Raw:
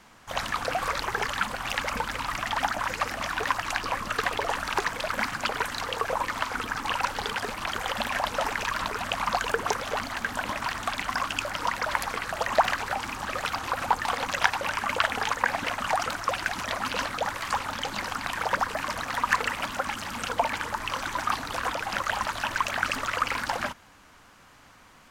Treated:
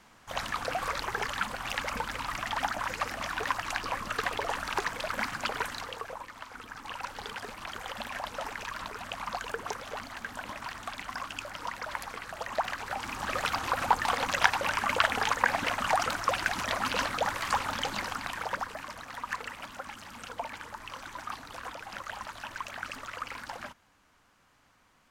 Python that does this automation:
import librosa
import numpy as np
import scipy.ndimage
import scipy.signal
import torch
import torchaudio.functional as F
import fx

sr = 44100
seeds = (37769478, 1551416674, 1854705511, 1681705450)

y = fx.gain(x, sr, db=fx.line((5.66, -4.0), (6.31, -16.0), (7.27, -9.0), (12.66, -9.0), (13.31, -0.5), (17.83, -0.5), (18.96, -11.5)))